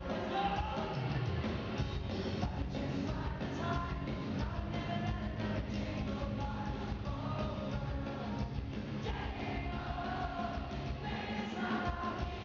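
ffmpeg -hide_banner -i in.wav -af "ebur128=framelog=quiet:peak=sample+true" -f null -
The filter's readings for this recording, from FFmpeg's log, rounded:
Integrated loudness:
  I:         -38.4 LUFS
  Threshold: -48.4 LUFS
Loudness range:
  LRA:         1.8 LU
  Threshold: -58.6 LUFS
  LRA low:   -39.5 LUFS
  LRA high:  -37.7 LUFS
Sample peak:
  Peak:      -21.8 dBFS
True peak:
  Peak:      -21.8 dBFS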